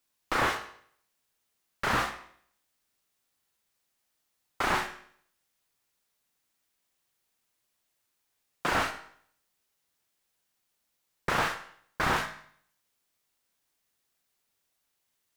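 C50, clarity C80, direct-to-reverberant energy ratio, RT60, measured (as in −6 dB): 9.0 dB, 12.0 dB, 5.5 dB, 0.60 s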